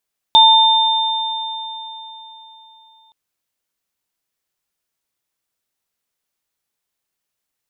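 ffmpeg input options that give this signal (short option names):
-f lavfi -i "aevalsrc='0.398*pow(10,-3*t/3.76)*sin(2*PI*891*t)+0.447*pow(10,-3*t/3.64)*sin(2*PI*3600*t)':d=2.77:s=44100"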